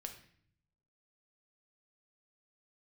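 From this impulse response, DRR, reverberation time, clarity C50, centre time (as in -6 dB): 4.0 dB, 0.60 s, 9.0 dB, 15 ms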